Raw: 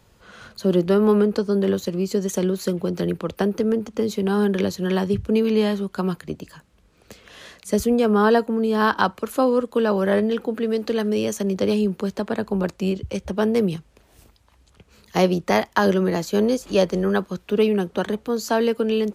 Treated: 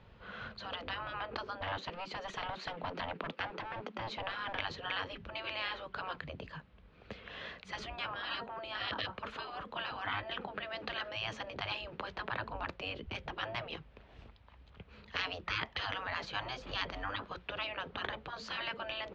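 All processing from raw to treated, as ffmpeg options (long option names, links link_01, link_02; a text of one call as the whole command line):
ffmpeg -i in.wav -filter_complex "[0:a]asettb=1/sr,asplit=3[link_01][link_02][link_03];[link_01]atrim=end=1.614[link_04];[link_02]atrim=start=1.61:end=4.6,asetpts=PTS-STARTPTS,afade=type=in:duration=0.004:curve=qsin,afade=type=out:start_time=2.986:duration=0.004:curve=qsin,highpass=frequency=200:width=0.5412,highpass=frequency=200:width=1.3066,aeval=exprs='clip(val(0),-1,0.0531)':channel_layout=same[link_05];[link_03]atrim=start=4.596[link_06];[link_04][link_05]acrossfade=duration=0.004:curve1=hsin:curve2=qsin[link_07];[link_07][link_06]acrossfade=duration=0.004:curve1=qsin:curve2=hsin,afftfilt=real='re*lt(hypot(re,im),0.112)':imag='im*lt(hypot(re,im),0.112)':win_size=1024:overlap=0.75,lowpass=frequency=3500:width=0.5412,lowpass=frequency=3500:width=1.3066,equalizer=frequency=330:width=2.5:gain=-4.5,volume=-1dB" out.wav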